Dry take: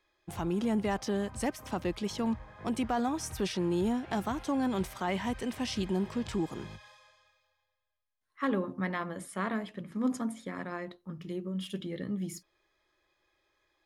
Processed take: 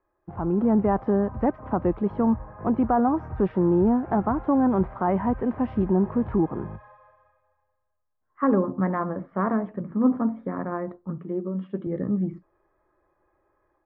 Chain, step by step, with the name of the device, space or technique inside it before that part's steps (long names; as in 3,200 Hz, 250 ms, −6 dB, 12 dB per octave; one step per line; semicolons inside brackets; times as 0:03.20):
0:11.18–0:11.87: high-pass filter 210 Hz
action camera in a waterproof case (low-pass filter 1,300 Hz 24 dB per octave; automatic gain control gain up to 6.5 dB; level +3 dB; AAC 48 kbit/s 24,000 Hz)